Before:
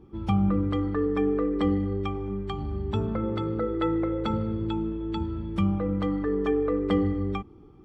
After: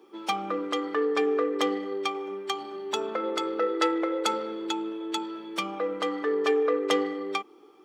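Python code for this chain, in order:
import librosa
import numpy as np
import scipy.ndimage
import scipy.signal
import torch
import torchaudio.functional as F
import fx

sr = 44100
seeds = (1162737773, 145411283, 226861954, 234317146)

y = fx.tracing_dist(x, sr, depth_ms=0.067)
y = scipy.signal.sosfilt(scipy.signal.butter(4, 370.0, 'highpass', fs=sr, output='sos'), y)
y = fx.high_shelf(y, sr, hz=2300.0, db=10.5)
y = F.gain(torch.from_numpy(y), 3.0).numpy()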